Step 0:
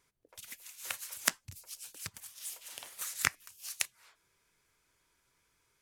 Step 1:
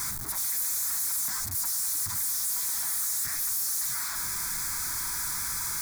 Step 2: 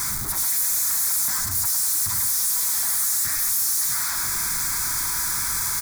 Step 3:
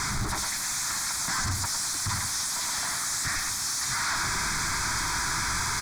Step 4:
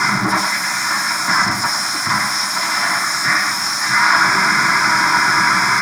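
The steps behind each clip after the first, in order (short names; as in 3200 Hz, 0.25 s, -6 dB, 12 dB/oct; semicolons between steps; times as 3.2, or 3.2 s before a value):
infinite clipping; high shelf 2300 Hz +10 dB; fixed phaser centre 1200 Hz, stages 4; gain +5.5 dB
echo 0.105 s -6 dB; gain +6 dB
air absorption 100 m; gain +4.5 dB
reverb, pre-delay 3 ms, DRR -2.5 dB; gain +5.5 dB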